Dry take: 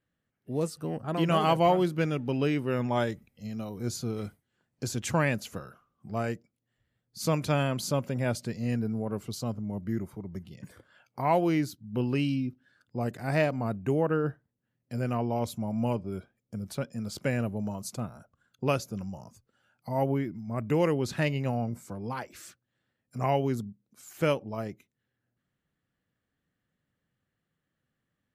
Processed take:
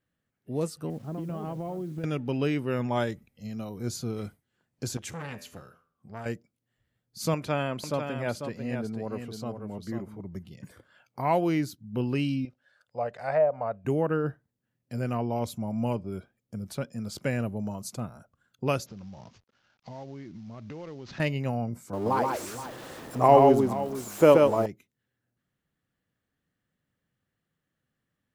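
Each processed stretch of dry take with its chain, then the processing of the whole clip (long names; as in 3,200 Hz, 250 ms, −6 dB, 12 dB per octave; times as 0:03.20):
0:00.90–0:02.04: resonant band-pass 180 Hz, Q 0.59 + downward compressor 12 to 1, threshold −30 dBFS + bit-depth reduction 10 bits, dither none
0:04.97–0:06.26: tuned comb filter 84 Hz, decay 0.48 s, mix 50% + saturating transformer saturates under 1,400 Hz
0:07.34–0:10.20: bass and treble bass −6 dB, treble −8 dB + single-tap delay 494 ms −7 dB
0:12.45–0:13.85: treble cut that deepens with the level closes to 770 Hz, closed at −21.5 dBFS + low shelf with overshoot 420 Hz −10 dB, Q 3
0:18.86–0:21.20: variable-slope delta modulation 32 kbit/s + downward compressor 5 to 1, threshold −39 dBFS
0:21.93–0:24.66: converter with a step at zero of −41.5 dBFS + flat-topped bell 570 Hz +9.5 dB 2.4 octaves + multi-tap delay 128/472 ms −3.5/−14 dB
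whole clip: no processing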